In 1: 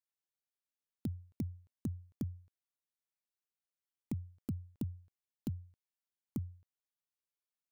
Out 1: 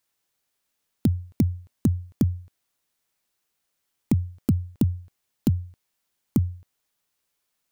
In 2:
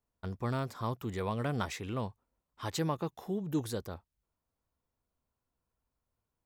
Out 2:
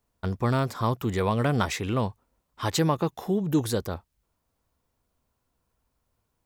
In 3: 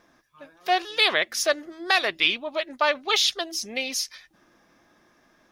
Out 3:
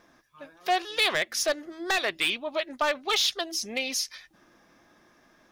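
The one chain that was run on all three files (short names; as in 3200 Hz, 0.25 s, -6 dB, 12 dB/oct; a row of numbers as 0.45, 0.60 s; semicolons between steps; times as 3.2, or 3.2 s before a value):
in parallel at -3 dB: compressor, threshold -30 dBFS; on the sum: hard clip -14.5 dBFS; match loudness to -27 LUFS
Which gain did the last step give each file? +12.5, +5.0, -4.0 dB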